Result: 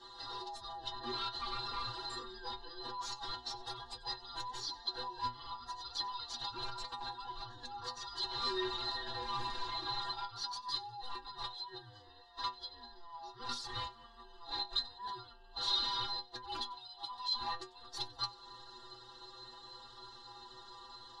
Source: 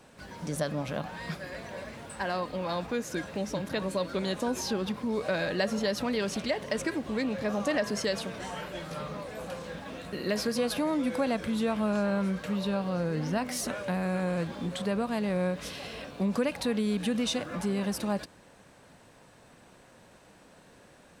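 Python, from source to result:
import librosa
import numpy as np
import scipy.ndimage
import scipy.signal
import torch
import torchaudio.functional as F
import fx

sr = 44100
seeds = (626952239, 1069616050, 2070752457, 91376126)

p1 = fx.band_swap(x, sr, width_hz=500)
p2 = p1 + 0.52 * np.pad(p1, (int(5.9 * sr / 1000.0), 0))[:len(p1)]
p3 = fx.over_compress(p2, sr, threshold_db=-38.0, ratio=-1.0)
p4 = fx.transient(p3, sr, attack_db=-1, sustain_db=-5)
p5 = fx.fixed_phaser(p4, sr, hz=640.0, stages=6)
p6 = np.clip(p5, -10.0 ** (-33.0 / 20.0), 10.0 ** (-33.0 / 20.0))
p7 = fx.lowpass_res(p6, sr, hz=4000.0, q=9.2)
p8 = fx.stiff_resonator(p7, sr, f0_hz=120.0, decay_s=0.31, stiffness=0.008)
p9 = p8 + fx.echo_wet_highpass(p8, sr, ms=93, feedback_pct=52, hz=1900.0, wet_db=-21.5, dry=0)
y = F.gain(torch.from_numpy(p9), 6.5).numpy()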